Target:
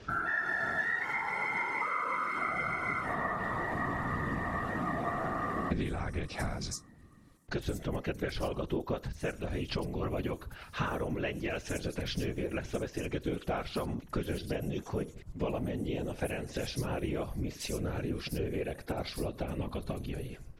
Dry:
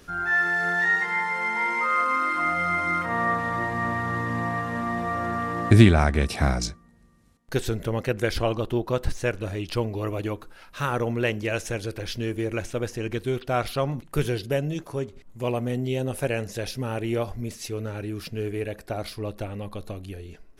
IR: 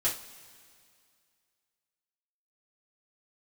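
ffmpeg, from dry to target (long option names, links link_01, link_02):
-filter_complex "[0:a]acrossover=split=5900[link_01][link_02];[link_02]adelay=100[link_03];[link_01][link_03]amix=inputs=2:normalize=0,acompressor=threshold=-32dB:ratio=6,afftfilt=real='hypot(re,im)*cos(2*PI*random(0))':imag='hypot(re,im)*sin(2*PI*random(1))':win_size=512:overlap=0.75,volume=7dB"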